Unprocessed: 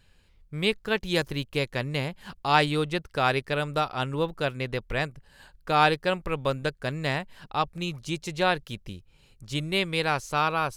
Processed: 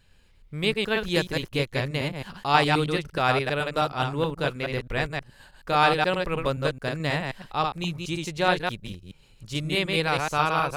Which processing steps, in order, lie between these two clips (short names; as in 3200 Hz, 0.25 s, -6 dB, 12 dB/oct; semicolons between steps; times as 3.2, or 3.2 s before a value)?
reverse delay 0.106 s, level -3 dB